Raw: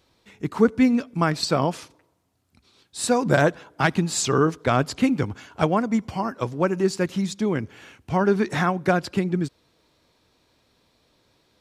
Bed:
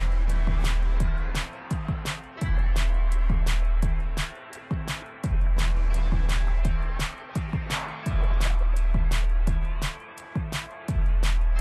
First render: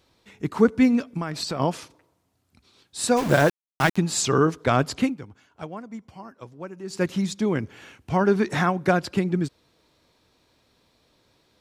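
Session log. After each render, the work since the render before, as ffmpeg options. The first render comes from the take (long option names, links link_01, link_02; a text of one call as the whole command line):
ffmpeg -i in.wav -filter_complex "[0:a]asplit=3[link_01][link_02][link_03];[link_01]afade=type=out:start_time=1.17:duration=0.02[link_04];[link_02]acompressor=threshold=-25dB:ratio=5:attack=3.2:release=140:knee=1:detection=peak,afade=type=in:start_time=1.17:duration=0.02,afade=type=out:start_time=1.59:duration=0.02[link_05];[link_03]afade=type=in:start_time=1.59:duration=0.02[link_06];[link_04][link_05][link_06]amix=inputs=3:normalize=0,asplit=3[link_07][link_08][link_09];[link_07]afade=type=out:start_time=3.16:duration=0.02[link_10];[link_08]aeval=exprs='val(0)*gte(abs(val(0)),0.0501)':channel_layout=same,afade=type=in:start_time=3.16:duration=0.02,afade=type=out:start_time=3.96:duration=0.02[link_11];[link_09]afade=type=in:start_time=3.96:duration=0.02[link_12];[link_10][link_11][link_12]amix=inputs=3:normalize=0,asplit=3[link_13][link_14][link_15];[link_13]atrim=end=5.16,asetpts=PTS-STARTPTS,afade=type=out:start_time=5:duration=0.16:silence=0.177828[link_16];[link_14]atrim=start=5.16:end=6.86,asetpts=PTS-STARTPTS,volume=-15dB[link_17];[link_15]atrim=start=6.86,asetpts=PTS-STARTPTS,afade=type=in:duration=0.16:silence=0.177828[link_18];[link_16][link_17][link_18]concat=n=3:v=0:a=1" out.wav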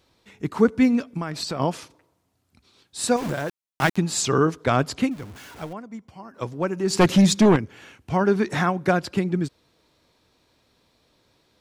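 ffmpeg -i in.wav -filter_complex "[0:a]asettb=1/sr,asplit=3[link_01][link_02][link_03];[link_01]atrim=end=3.164[link_04];[link_02]atrim=start=3.16:end=3.82,asetpts=PTS-STARTPTS,afade=type=in:duration=0.004:curve=qsin,afade=type=out:start_time=0.656:duration=0.004:curve=qsin,acompressor=threshold=-23dB:ratio=6:attack=3.2:release=140:knee=1:detection=peak[link_05];[link_03]atrim=start=3.816[link_06];[link_04][link_05]acrossfade=duration=0.004:curve1=hsin:curve2=qsin[link_07];[link_07][link_06]acrossfade=duration=0.004:curve1=qsin:curve2=hsin,asettb=1/sr,asplit=3[link_08][link_09][link_10];[link_08]atrim=end=5.114[link_11];[link_09]atrim=start=5.11:end=5.73,asetpts=PTS-STARTPTS,afade=type=in:duration=0.004:curve=qsin,afade=type=out:start_time=0.616:duration=0.004:curve=qsin,aeval=exprs='val(0)+0.5*0.0119*sgn(val(0))':channel_layout=same[link_12];[link_10]atrim=start=5.726[link_13];[link_11][link_12]acrossfade=duration=0.004:curve1=hsin:curve2=qsin[link_14];[link_14][link_13]acrossfade=duration=0.004:curve1=qsin:curve2=hsin,asplit=3[link_15][link_16][link_17];[link_15]afade=type=out:start_time=6.33:duration=0.02[link_18];[link_16]aeval=exprs='0.299*sin(PI/2*2.51*val(0)/0.299)':channel_layout=same,afade=type=in:start_time=6.33:duration=0.02,afade=type=out:start_time=7.55:duration=0.02[link_19];[link_17]afade=type=in:start_time=7.55:duration=0.02[link_20];[link_18][link_19][link_20]amix=inputs=3:normalize=0" out.wav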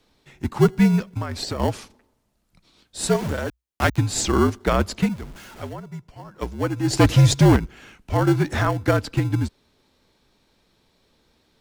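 ffmpeg -i in.wav -filter_complex "[0:a]asplit=2[link_01][link_02];[link_02]acrusher=samples=35:mix=1:aa=0.000001,volume=-11dB[link_03];[link_01][link_03]amix=inputs=2:normalize=0,afreqshift=-61" out.wav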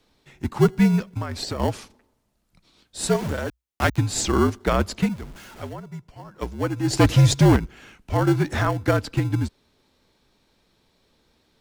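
ffmpeg -i in.wav -af "volume=-1dB" out.wav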